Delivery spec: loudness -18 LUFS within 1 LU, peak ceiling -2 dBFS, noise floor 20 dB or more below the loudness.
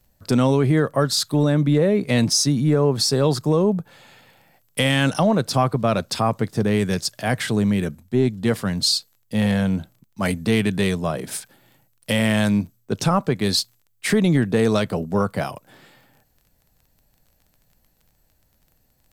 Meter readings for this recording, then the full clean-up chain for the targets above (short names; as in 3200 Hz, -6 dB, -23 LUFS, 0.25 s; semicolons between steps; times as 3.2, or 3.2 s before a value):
ticks 23/s; loudness -21.0 LUFS; peak -6.5 dBFS; loudness target -18.0 LUFS
-> de-click; gain +3 dB